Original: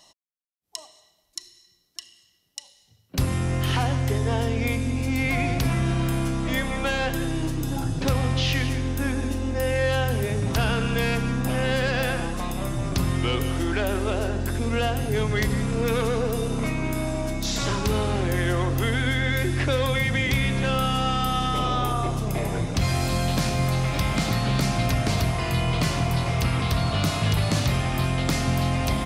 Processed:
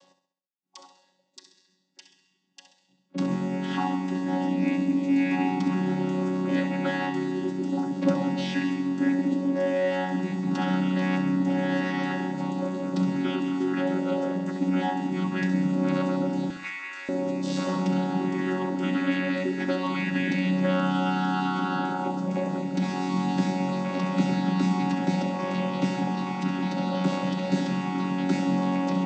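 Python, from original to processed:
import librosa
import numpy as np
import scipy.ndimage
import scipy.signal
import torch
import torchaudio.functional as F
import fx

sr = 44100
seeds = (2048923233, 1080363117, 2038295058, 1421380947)

p1 = fx.chord_vocoder(x, sr, chord='bare fifth', root=54)
p2 = fx.highpass_res(p1, sr, hz=1800.0, q=3.1, at=(16.5, 17.09))
y = p2 + fx.echo_feedback(p2, sr, ms=66, feedback_pct=45, wet_db=-10.0, dry=0)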